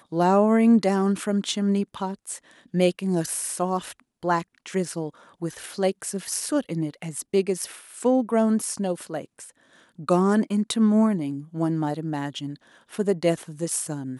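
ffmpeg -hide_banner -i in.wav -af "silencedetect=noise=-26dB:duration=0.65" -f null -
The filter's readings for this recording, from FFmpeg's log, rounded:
silence_start: 9.21
silence_end: 10.09 | silence_duration: 0.88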